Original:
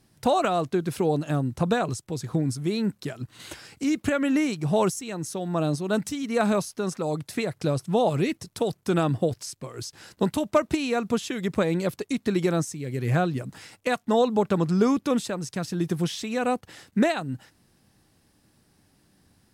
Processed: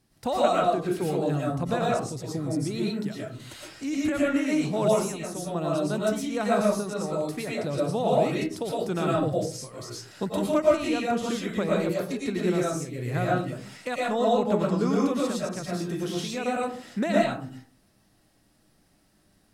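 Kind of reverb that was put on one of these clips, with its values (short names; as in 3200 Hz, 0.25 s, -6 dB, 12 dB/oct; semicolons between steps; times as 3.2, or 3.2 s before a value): digital reverb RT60 0.44 s, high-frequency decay 0.45×, pre-delay 75 ms, DRR -5 dB; gain -6.5 dB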